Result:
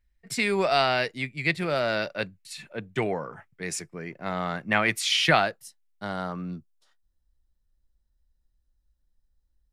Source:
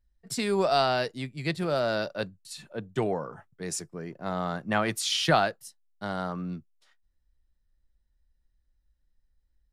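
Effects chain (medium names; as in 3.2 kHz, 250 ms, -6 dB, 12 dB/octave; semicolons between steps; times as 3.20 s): peaking EQ 2.2 kHz +12.5 dB 0.72 oct, from 5.42 s +4 dB, from 6.51 s -9 dB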